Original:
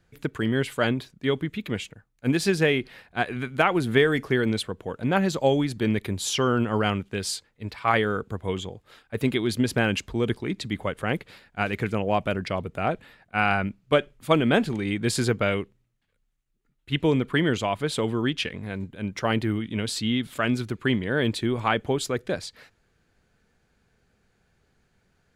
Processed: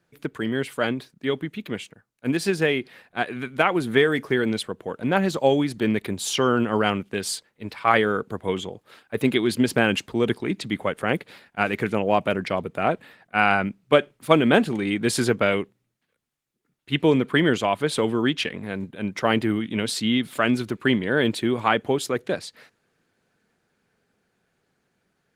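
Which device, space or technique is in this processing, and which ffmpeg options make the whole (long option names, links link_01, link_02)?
video call: -af "highpass=160,dynaudnorm=framelen=680:gausssize=13:maxgain=9dB" -ar 48000 -c:a libopus -b:a 24k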